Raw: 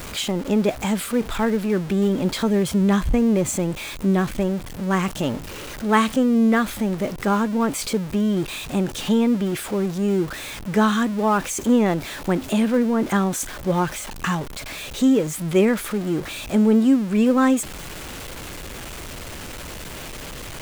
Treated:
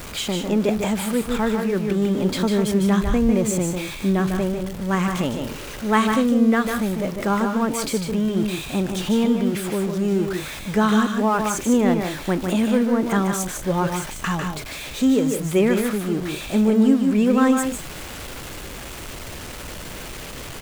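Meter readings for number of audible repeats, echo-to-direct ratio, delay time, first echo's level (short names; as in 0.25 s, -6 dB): 2, -4.5 dB, 0.15 s, -5.5 dB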